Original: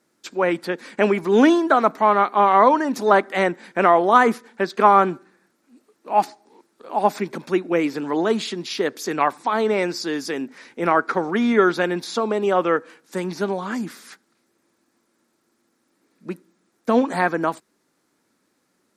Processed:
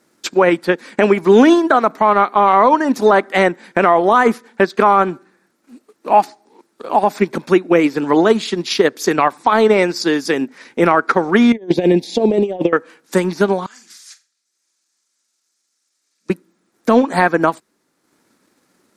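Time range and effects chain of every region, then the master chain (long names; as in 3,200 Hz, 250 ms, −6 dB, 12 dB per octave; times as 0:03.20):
0:11.52–0:12.73: high-shelf EQ 3,800 Hz −10 dB + compressor whose output falls as the input rises −23 dBFS, ratio −0.5 + Butterworth band-reject 1,300 Hz, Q 0.88
0:13.66–0:16.30: resonant band-pass 6,200 Hz, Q 1.7 + flutter between parallel walls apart 7.4 metres, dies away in 0.35 s
whole clip: transient designer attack +5 dB, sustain −6 dB; boost into a limiter +9 dB; level −1 dB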